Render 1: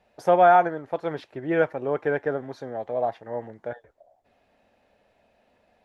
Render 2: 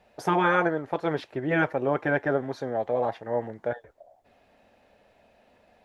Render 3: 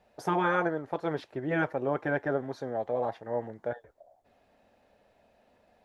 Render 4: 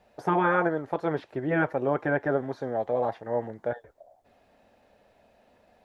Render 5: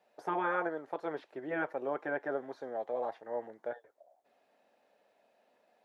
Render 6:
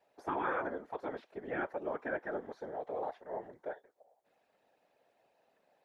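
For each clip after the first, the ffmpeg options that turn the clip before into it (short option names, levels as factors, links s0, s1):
-af "afftfilt=real='re*lt(hypot(re,im),0.501)':imag='im*lt(hypot(re,im),0.501)':win_size=1024:overlap=0.75,volume=1.58"
-af "equalizer=f=2500:t=o:w=1:g=-3.5,volume=0.631"
-filter_complex "[0:a]acrossover=split=2700[s0][s1];[s1]acompressor=threshold=0.00112:ratio=4:attack=1:release=60[s2];[s0][s2]amix=inputs=2:normalize=0,volume=1.5"
-af "highpass=320,volume=0.398"
-af "afftfilt=real='hypot(re,im)*cos(2*PI*random(0))':imag='hypot(re,im)*sin(2*PI*random(1))':win_size=512:overlap=0.75,volume=1.5"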